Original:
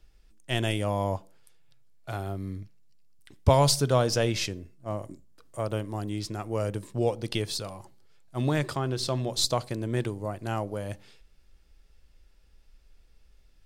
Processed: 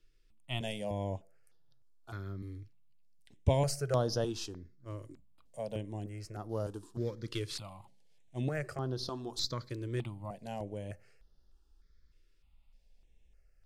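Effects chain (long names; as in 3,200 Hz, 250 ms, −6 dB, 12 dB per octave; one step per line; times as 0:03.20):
0:06.49–0:08.40: variable-slope delta modulation 64 kbit/s
high-shelf EQ 9,300 Hz −9 dB
step-sequenced phaser 3.3 Hz 200–7,900 Hz
level −6 dB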